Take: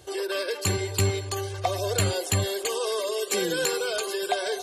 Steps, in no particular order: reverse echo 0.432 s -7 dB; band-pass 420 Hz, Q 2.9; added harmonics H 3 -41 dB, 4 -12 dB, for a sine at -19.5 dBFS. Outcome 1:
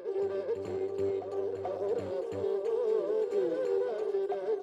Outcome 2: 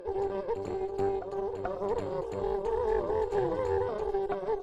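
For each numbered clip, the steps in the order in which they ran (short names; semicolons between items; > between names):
added harmonics > band-pass > reverse echo; band-pass > reverse echo > added harmonics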